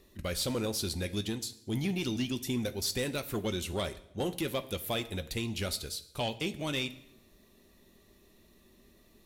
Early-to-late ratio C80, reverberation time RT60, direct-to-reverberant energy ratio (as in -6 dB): 18.5 dB, 0.80 s, 12.0 dB